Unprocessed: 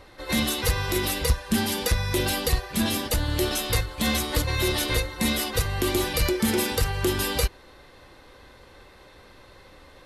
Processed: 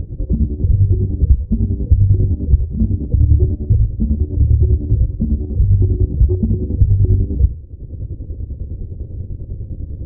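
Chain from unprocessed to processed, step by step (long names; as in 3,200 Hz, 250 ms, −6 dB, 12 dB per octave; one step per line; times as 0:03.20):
sub-octave generator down 2 octaves, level −5 dB
brickwall limiter −17 dBFS, peak gain reduction 7.5 dB
inverse Chebyshev low-pass filter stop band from 1,800 Hz, stop band 70 dB
square-wave tremolo 10 Hz, depth 65%, duty 50%
parametric band 93 Hz +13 dB 2.1 octaves
convolution reverb RT60 0.45 s, pre-delay 65 ms, DRR 18 dB
upward compression, threshold −22 dBFS
soft clipping −11.5 dBFS, distortion −17 dB
low-shelf EQ 200 Hz +10 dB
level +1.5 dB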